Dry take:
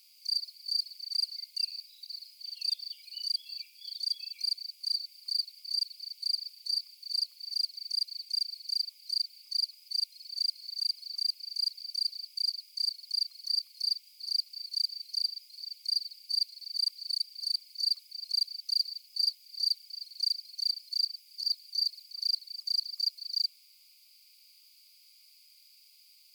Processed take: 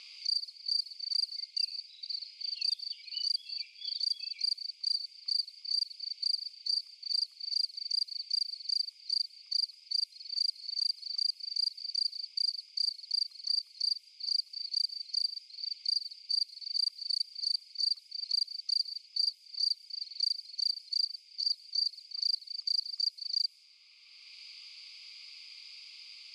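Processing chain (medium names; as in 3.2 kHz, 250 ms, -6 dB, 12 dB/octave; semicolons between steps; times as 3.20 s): Bessel low-pass 8.3 kHz, order 8; level-controlled noise filter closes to 2.8 kHz, open at -29 dBFS; three bands compressed up and down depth 70%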